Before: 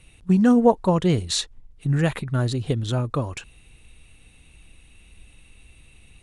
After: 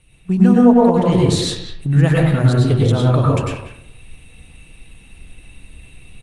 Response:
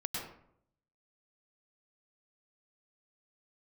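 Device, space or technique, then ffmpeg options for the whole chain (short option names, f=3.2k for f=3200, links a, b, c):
speakerphone in a meeting room: -filter_complex "[1:a]atrim=start_sample=2205[a];[0:a][a]afir=irnorm=-1:irlink=0,asplit=2[b][c];[c]adelay=190,highpass=300,lowpass=3.4k,asoftclip=type=hard:threshold=-11.5dB,volume=-9dB[d];[b][d]amix=inputs=2:normalize=0,dynaudnorm=f=100:g=5:m=7dB" -ar 48000 -c:a libopus -b:a 32k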